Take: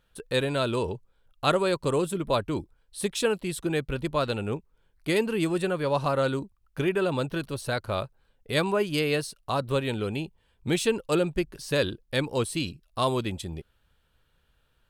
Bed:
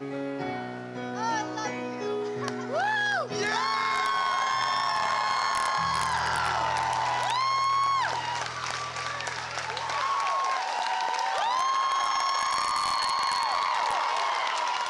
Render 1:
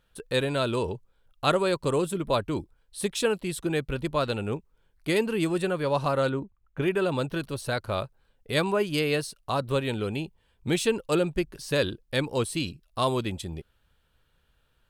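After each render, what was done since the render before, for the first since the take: 6.29–6.82 running mean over 9 samples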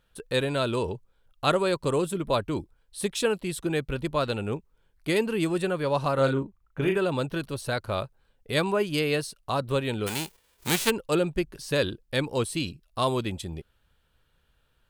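6.14–6.97 doubler 37 ms -5 dB; 10.06–10.89 spectral whitening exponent 0.3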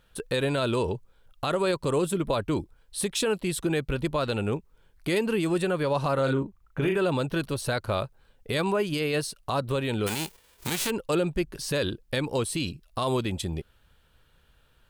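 in parallel at 0 dB: compressor, threshold -34 dBFS, peak gain reduction 15.5 dB; on the sum: limiter -16.5 dBFS, peak gain reduction 10.5 dB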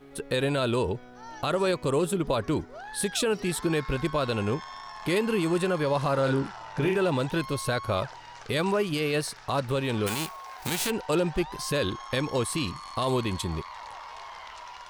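add bed -15 dB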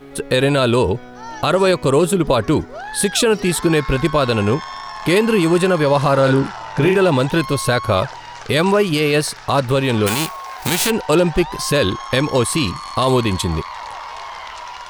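gain +11 dB

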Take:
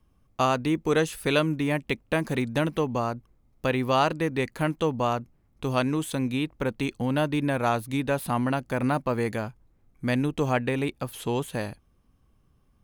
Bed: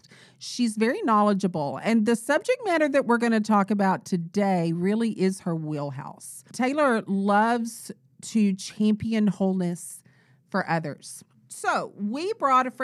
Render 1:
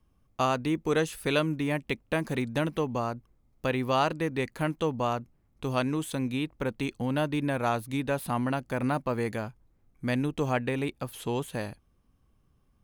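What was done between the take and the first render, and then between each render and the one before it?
gain -3 dB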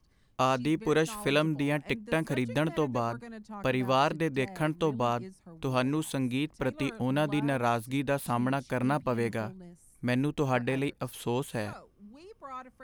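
add bed -22 dB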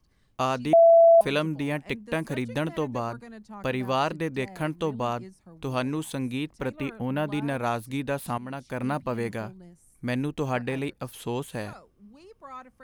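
0.73–1.21 bleep 668 Hz -11.5 dBFS; 6.76–7.28 band shelf 5900 Hz -9 dB; 8.38–9.03 fade in equal-power, from -14 dB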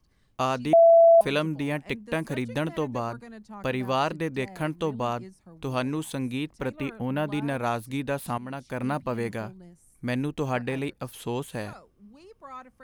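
nothing audible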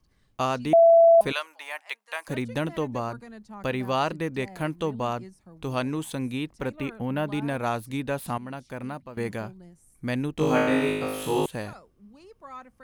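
1.32–2.28 HPF 770 Hz 24 dB/oct; 8.43–9.17 fade out, to -16 dB; 10.35–11.46 flutter echo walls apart 3.3 m, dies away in 1.1 s

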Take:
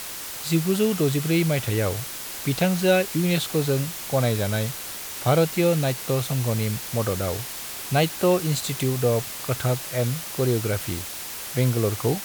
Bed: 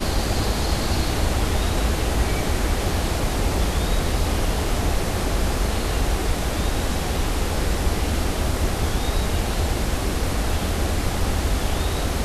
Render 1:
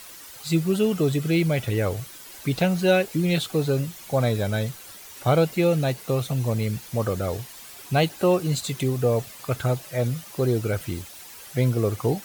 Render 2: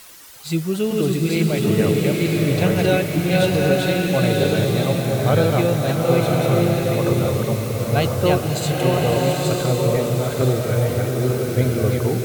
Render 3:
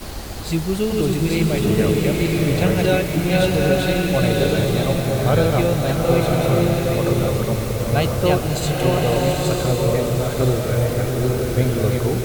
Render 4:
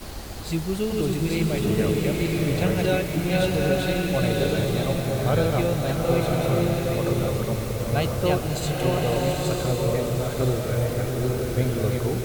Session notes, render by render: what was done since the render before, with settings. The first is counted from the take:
denoiser 11 dB, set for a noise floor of -35 dBFS
reverse delay 0.453 s, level -1.5 dB; bloom reverb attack 1.02 s, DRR -1 dB
add bed -9 dB
gain -5 dB

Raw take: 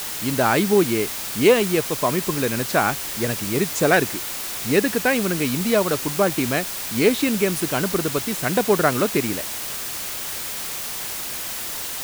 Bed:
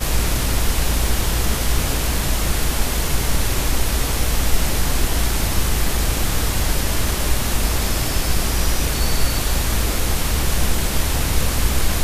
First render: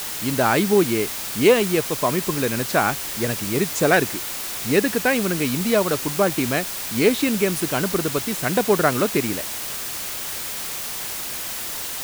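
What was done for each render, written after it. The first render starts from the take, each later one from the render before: nothing audible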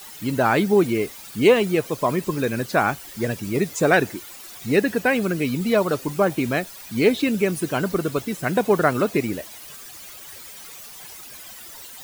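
denoiser 14 dB, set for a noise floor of -30 dBFS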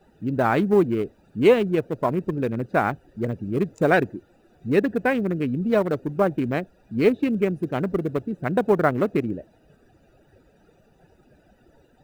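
Wiener smoothing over 41 samples; high shelf 2800 Hz -8.5 dB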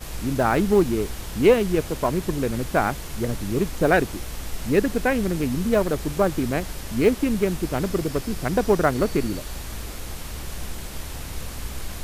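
add bed -14 dB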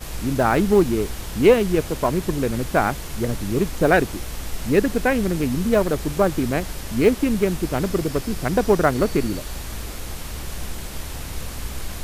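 gain +2 dB

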